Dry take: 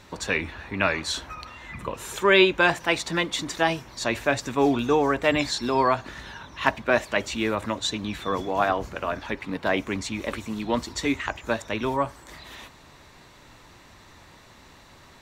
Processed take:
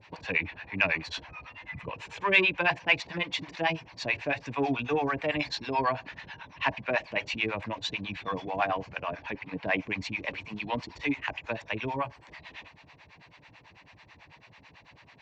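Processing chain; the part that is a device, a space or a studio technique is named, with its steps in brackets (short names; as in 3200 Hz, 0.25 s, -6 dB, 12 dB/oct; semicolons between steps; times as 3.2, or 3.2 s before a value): guitar amplifier with harmonic tremolo (harmonic tremolo 9.1 Hz, depth 100%, crossover 590 Hz; soft clip -13.5 dBFS, distortion -21 dB; speaker cabinet 100–4500 Hz, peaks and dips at 230 Hz -9 dB, 370 Hz -9 dB, 560 Hz -4 dB, 1300 Hz -9 dB, 2500 Hz +6 dB, 3700 Hz -7 dB); gain +2.5 dB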